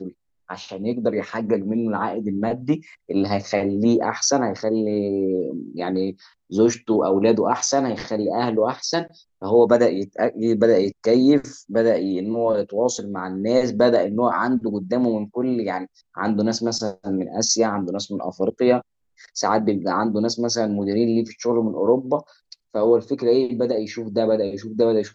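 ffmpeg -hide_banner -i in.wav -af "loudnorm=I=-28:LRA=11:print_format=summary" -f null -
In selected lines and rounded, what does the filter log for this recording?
Input Integrated:    -21.5 LUFS
Input True Peak:      -3.2 dBTP
Input LRA:             2.7 LU
Input Threshold:     -31.7 LUFS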